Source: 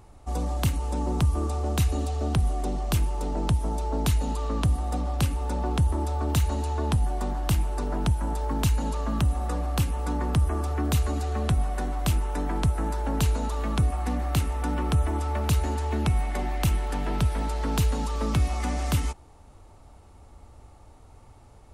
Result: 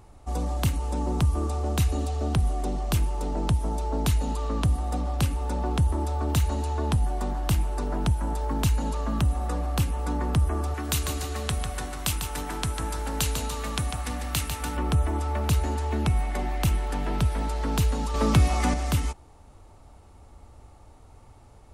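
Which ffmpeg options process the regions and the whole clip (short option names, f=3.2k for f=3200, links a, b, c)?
-filter_complex "[0:a]asettb=1/sr,asplit=3[a][b][c];[a]atrim=end=10.744[d];[b]atrim=start=10.74:end=14.77,asetpts=PTS-STARTPTS,afade=t=in:d=0.004:c=qsin,afade=t=out:st=4.026:d=0.004:c=qsin,tiltshelf=f=1.3k:g=-6.5,aecho=1:1:148|296|444|592|740:0.447|0.197|0.0865|0.0381|0.0167,atrim=end_sample=177723[e];[c]atrim=start=14.766[f];[d][e]acrossfade=d=0.004:c1=hsin:c2=qsin[g];[g][f]acrossfade=d=0.004:c1=qsin:c2=hsin,asettb=1/sr,asplit=3[h][i][j];[h]atrim=end=18.144[k];[i]atrim=start=18.14:end=18.74,asetpts=PTS-STARTPTS,afade=t=in:d=0.004:c=qsin,afade=t=out:st=0.596:d=0.004:c=qsin,highpass=60,acontrast=47[l];[j]atrim=start=18.736[m];[k][l]acrossfade=d=0.004:c1=hsin:c2=qsin[n];[n][m]acrossfade=d=0.004:c1=qsin:c2=hsin"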